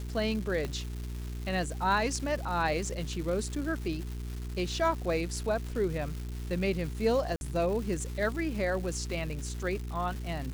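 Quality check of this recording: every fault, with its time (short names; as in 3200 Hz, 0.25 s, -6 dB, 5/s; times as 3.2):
crackle 500/s -38 dBFS
hum 60 Hz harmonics 7 -37 dBFS
0.65 pop -21 dBFS
7.36–7.41 gap 51 ms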